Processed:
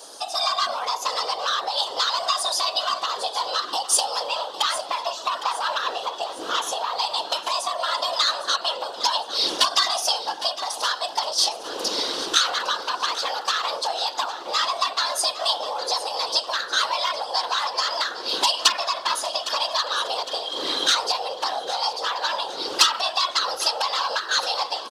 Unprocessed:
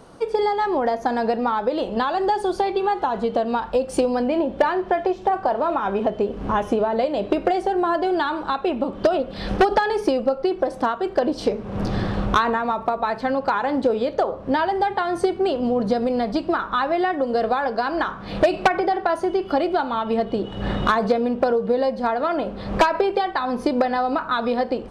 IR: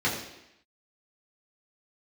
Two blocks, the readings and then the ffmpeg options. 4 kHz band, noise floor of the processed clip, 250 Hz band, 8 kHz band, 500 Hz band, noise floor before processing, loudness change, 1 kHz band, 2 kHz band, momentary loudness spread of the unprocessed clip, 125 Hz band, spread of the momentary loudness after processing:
+15.0 dB, -36 dBFS, -21.5 dB, n/a, -11.5 dB, -36 dBFS, -1.0 dB, -3.0 dB, -0.5 dB, 4 LU, under -25 dB, 6 LU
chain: -filter_complex "[0:a]highshelf=f=3.2k:g=-8.5,acrossover=split=640[a][b];[a]acompressor=threshold=-30dB:ratio=6[c];[c][b]amix=inputs=2:normalize=0,asoftclip=type=tanh:threshold=-17dB,aexciter=amount=14.9:drive=5.4:freq=2.8k,afreqshift=300,afftfilt=real='hypot(re,im)*cos(2*PI*random(0))':imag='hypot(re,im)*sin(2*PI*random(1))':win_size=512:overlap=0.75,asplit=2[d][e];[e]aecho=0:1:809|1618|2427|3236|4045:0.2|0.0958|0.046|0.0221|0.0106[f];[d][f]amix=inputs=2:normalize=0,volume=5dB"

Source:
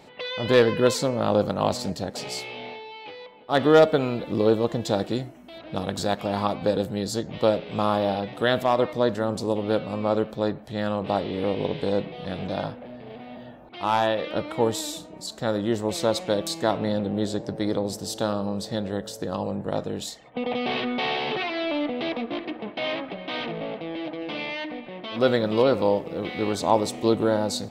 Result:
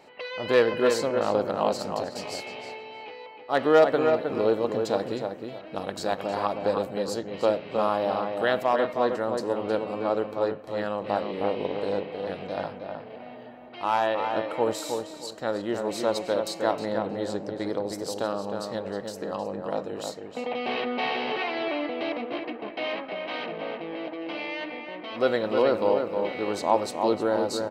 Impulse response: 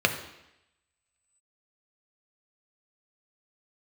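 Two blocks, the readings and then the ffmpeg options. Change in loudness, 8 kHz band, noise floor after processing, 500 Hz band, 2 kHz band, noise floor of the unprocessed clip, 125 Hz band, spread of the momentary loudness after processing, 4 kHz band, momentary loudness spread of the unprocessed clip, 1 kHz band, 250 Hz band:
-2.0 dB, -5.0 dB, -43 dBFS, -1.0 dB, -1.0 dB, -44 dBFS, -10.0 dB, 12 LU, -5.0 dB, 12 LU, -0.5 dB, -5.0 dB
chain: -filter_complex "[0:a]bass=f=250:g=-11,treble=f=4k:g=-4,bandreject=f=3.5k:w=8,asplit=2[a][b];[b]adelay=313,lowpass=f=2.5k:p=1,volume=-5dB,asplit=2[c][d];[d]adelay=313,lowpass=f=2.5k:p=1,volume=0.27,asplit=2[e][f];[f]adelay=313,lowpass=f=2.5k:p=1,volume=0.27,asplit=2[g][h];[h]adelay=313,lowpass=f=2.5k:p=1,volume=0.27[i];[c][e][g][i]amix=inputs=4:normalize=0[j];[a][j]amix=inputs=2:normalize=0,volume=-1.5dB"

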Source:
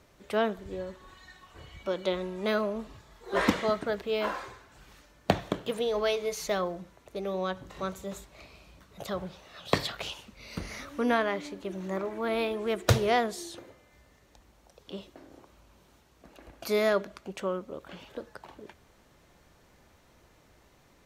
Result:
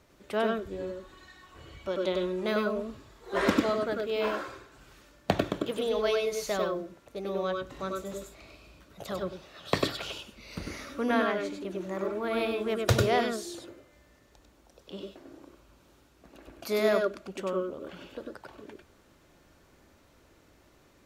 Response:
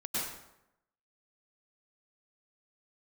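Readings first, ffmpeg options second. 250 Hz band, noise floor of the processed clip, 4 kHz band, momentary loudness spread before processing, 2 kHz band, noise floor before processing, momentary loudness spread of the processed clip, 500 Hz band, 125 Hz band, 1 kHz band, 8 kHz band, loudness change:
+1.5 dB, -61 dBFS, 0.0 dB, 18 LU, 0.0 dB, -62 dBFS, 18 LU, +1.0 dB, -0.5 dB, -0.5 dB, -0.5 dB, +0.5 dB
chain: -filter_complex "[1:a]atrim=start_sample=2205,atrim=end_sample=4410[a];[0:a][a]afir=irnorm=-1:irlink=0,volume=3dB"

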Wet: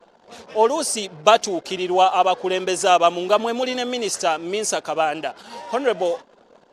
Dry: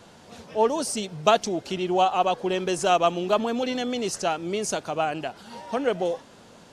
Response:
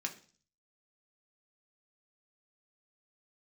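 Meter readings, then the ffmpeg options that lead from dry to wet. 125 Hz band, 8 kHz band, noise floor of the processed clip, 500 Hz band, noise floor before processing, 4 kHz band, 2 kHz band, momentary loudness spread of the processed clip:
-4.0 dB, +6.5 dB, -55 dBFS, +4.5 dB, -50 dBFS, +6.0 dB, +5.5 dB, 9 LU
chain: -af "bass=f=250:g=-12,treble=f=4k:g=1,anlmdn=0.01,volume=5.5dB"

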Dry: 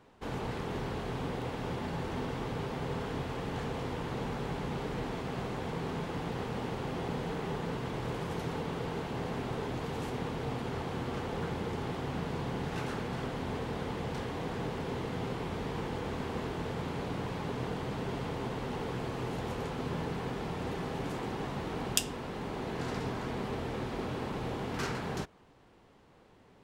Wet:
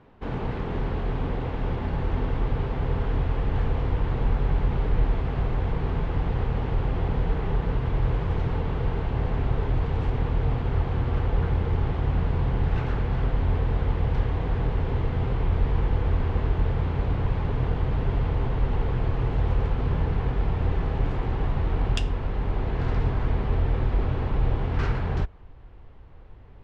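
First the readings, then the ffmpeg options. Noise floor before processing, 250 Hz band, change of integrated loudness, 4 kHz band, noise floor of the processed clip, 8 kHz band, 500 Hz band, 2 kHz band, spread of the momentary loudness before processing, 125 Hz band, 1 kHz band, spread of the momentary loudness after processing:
-60 dBFS, +4.0 dB, +9.5 dB, -1.5 dB, -44 dBFS, under -10 dB, +3.5 dB, +2.5 dB, 1 LU, +13.0 dB, +3.5 dB, 3 LU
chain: -af "asubboost=boost=8:cutoff=67,lowpass=2.9k,lowshelf=f=190:g=8,volume=3.5dB"

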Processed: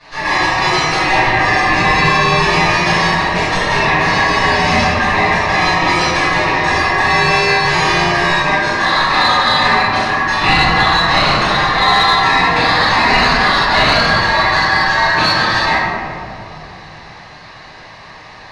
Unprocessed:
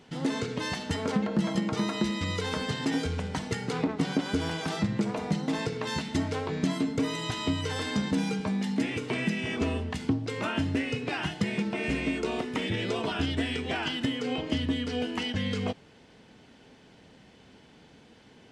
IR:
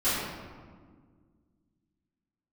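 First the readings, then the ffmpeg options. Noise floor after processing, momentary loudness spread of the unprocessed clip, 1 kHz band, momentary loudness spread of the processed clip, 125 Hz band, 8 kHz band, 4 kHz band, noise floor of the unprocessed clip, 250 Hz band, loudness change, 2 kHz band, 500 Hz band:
-36 dBFS, 3 LU, +26.0 dB, 4 LU, +11.0 dB, +15.0 dB, +19.5 dB, -56 dBFS, +6.0 dB, +18.0 dB, +24.5 dB, +14.5 dB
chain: -filter_complex "[0:a]highpass=f=270:w=0.5412,highpass=f=270:w=1.3066,equalizer=f=610:t=q:w=4:g=7,equalizer=f=1.2k:t=q:w=4:g=8,equalizer=f=1.8k:t=q:w=4:g=-4,equalizer=f=2.6k:t=q:w=4:g=10,equalizer=f=3.9k:t=q:w=4:g=4,equalizer=f=6.2k:t=q:w=4:g=-9,lowpass=f=7.4k:w=0.5412,lowpass=f=7.4k:w=1.3066,aeval=exprs='val(0)*sin(2*PI*1400*n/s)':c=same[a];[1:a]atrim=start_sample=2205,asetrate=24696,aresample=44100[b];[a][b]afir=irnorm=-1:irlink=0,asplit=2[c][d];[d]acontrast=83,volume=-2dB[e];[c][e]amix=inputs=2:normalize=0,volume=-4dB"

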